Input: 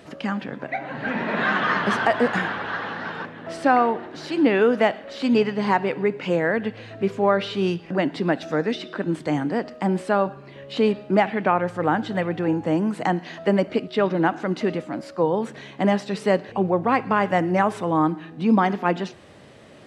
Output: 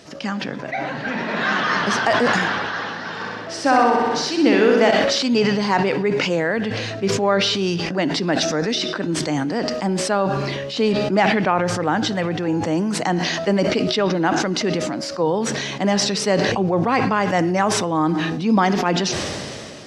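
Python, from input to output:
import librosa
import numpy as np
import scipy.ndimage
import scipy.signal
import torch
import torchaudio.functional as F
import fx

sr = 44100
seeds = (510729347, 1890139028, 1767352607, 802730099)

y = fx.room_flutter(x, sr, wall_m=10.8, rt60_s=1.0, at=(3.15, 4.9), fade=0.02)
y = fx.peak_eq(y, sr, hz=5600.0, db=14.0, octaves=0.93)
y = fx.sustainer(y, sr, db_per_s=23.0)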